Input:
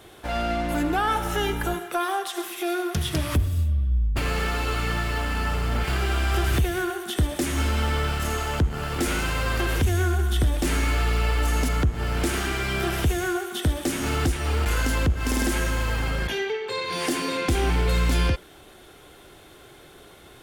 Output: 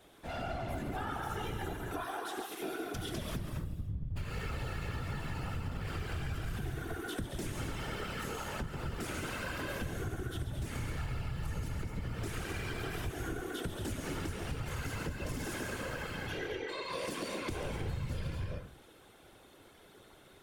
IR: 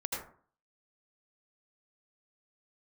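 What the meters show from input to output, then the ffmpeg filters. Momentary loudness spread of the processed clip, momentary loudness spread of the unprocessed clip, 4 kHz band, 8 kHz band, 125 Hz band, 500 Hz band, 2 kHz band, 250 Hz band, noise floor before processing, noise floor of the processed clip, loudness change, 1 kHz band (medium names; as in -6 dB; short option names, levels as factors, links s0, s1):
3 LU, 4 LU, -14.0 dB, -14.5 dB, -13.0 dB, -12.5 dB, -13.0 dB, -13.0 dB, -49 dBFS, -59 dBFS, -14.0 dB, -13.5 dB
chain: -filter_complex "[0:a]asplit=2[s0][s1];[1:a]atrim=start_sample=2205,adelay=138[s2];[s1][s2]afir=irnorm=-1:irlink=0,volume=0.531[s3];[s0][s3]amix=inputs=2:normalize=0,afftfilt=real='hypot(re,im)*cos(2*PI*random(0))':imag='hypot(re,im)*sin(2*PI*random(1))':win_size=512:overlap=0.75,acompressor=threshold=0.0398:ratio=6,volume=0.501"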